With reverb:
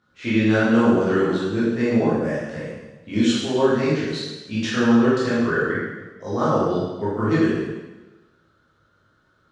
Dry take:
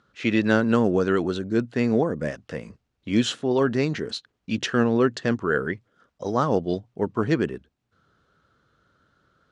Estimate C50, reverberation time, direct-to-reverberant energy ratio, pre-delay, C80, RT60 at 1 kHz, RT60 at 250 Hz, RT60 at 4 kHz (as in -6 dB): -1.5 dB, 1.2 s, -10.5 dB, 7 ms, 1.5 dB, 1.2 s, 1.2 s, 1.1 s